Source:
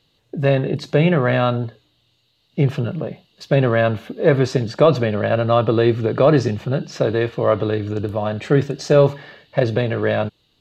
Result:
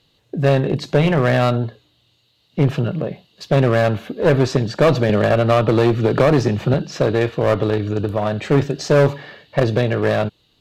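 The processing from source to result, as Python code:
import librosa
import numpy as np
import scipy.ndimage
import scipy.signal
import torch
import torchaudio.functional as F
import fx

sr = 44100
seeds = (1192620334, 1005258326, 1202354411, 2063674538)

y = fx.clip_asym(x, sr, top_db=-18.5, bottom_db=-7.5)
y = fx.band_squash(y, sr, depth_pct=70, at=(5.09, 6.74))
y = F.gain(torch.from_numpy(y), 2.5).numpy()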